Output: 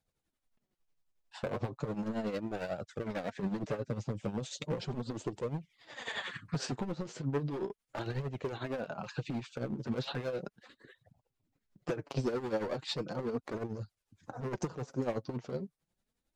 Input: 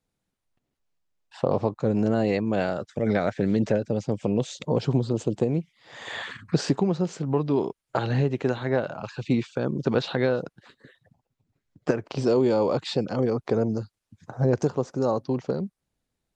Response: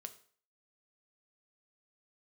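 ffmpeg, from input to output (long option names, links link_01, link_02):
-af "asoftclip=type=hard:threshold=-22.5dB,acompressor=threshold=-30dB:ratio=6,flanger=delay=1.2:depth=8.3:regen=27:speed=0.36:shape=triangular,tremolo=f=11:d=0.65,volume=3dB"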